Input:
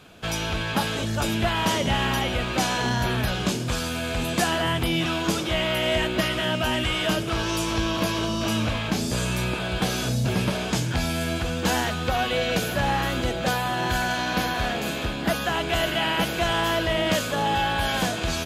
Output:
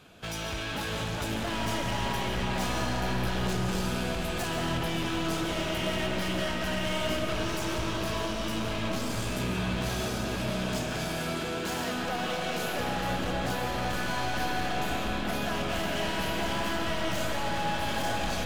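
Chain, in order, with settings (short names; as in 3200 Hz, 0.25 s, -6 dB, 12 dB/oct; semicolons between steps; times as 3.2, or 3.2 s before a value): 10.01–12.8 HPF 180 Hz 12 dB/oct; hard clip -27.5 dBFS, distortion -7 dB; reverb RT60 5.5 s, pre-delay 0.105 s, DRR -1 dB; gain -5 dB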